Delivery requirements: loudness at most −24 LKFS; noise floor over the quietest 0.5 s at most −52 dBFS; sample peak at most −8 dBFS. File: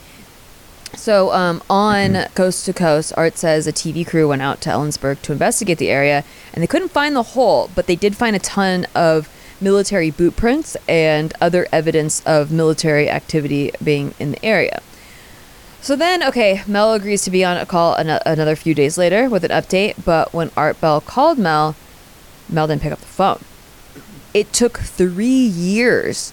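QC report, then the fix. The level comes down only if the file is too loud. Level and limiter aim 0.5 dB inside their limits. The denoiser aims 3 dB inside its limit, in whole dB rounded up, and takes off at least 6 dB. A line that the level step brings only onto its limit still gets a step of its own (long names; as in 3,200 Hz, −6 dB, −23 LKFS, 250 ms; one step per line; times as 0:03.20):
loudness −16.5 LKFS: out of spec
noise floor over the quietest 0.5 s −42 dBFS: out of spec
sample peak −1.5 dBFS: out of spec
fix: broadband denoise 6 dB, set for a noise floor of −42 dBFS
level −8 dB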